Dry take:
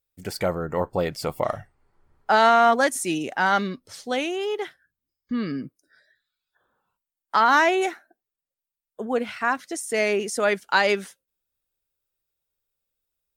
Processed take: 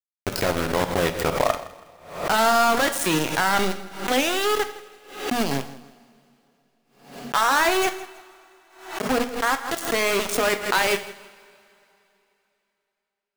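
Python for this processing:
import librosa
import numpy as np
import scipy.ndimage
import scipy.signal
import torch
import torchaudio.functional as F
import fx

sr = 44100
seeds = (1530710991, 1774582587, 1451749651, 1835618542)

p1 = fx.low_shelf(x, sr, hz=180.0, db=3.5)
p2 = fx.over_compress(p1, sr, threshold_db=-24.0, ratio=-0.5)
p3 = p1 + (p2 * 10.0 ** (-0.5 / 20.0))
p4 = np.where(np.abs(p3) >= 10.0 ** (-16.5 / 20.0), p3, 0.0)
p5 = p4 + fx.echo_feedback(p4, sr, ms=163, feedback_pct=33, wet_db=-18, dry=0)
p6 = fx.rev_double_slope(p5, sr, seeds[0], early_s=0.46, late_s=3.2, knee_db=-22, drr_db=8.0)
p7 = fx.pre_swell(p6, sr, db_per_s=98.0)
y = p7 * 10.0 ** (-3.0 / 20.0)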